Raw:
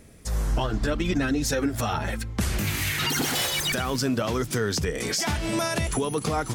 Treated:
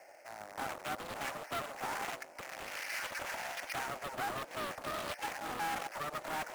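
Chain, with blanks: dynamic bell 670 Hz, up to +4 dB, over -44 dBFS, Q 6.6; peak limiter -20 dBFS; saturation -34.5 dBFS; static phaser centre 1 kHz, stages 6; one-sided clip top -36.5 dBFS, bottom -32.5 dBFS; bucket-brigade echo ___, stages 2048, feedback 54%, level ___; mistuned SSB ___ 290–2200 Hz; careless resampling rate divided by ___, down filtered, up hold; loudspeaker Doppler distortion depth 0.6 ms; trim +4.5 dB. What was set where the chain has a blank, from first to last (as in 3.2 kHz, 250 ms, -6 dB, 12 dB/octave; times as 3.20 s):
519 ms, -23 dB, +160 Hz, 6×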